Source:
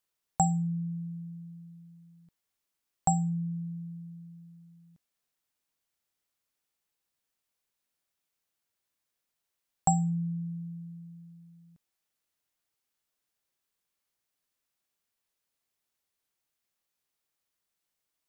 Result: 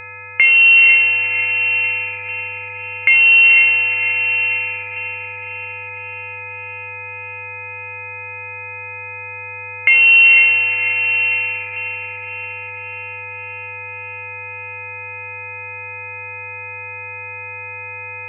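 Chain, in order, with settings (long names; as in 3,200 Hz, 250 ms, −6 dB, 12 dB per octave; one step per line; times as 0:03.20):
adaptive Wiener filter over 15 samples
high-pass filter 210 Hz 12 dB per octave
downward compressor 3 to 1, threshold −53 dBFS, peak gain reduction 23 dB
leveller curve on the samples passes 2
hum with harmonics 400 Hz, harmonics 34, −66 dBFS −4 dB per octave
feedback delay with all-pass diffusion 496 ms, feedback 56%, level −8 dB
voice inversion scrambler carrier 2,900 Hz
boost into a limiter +34 dB
level −1 dB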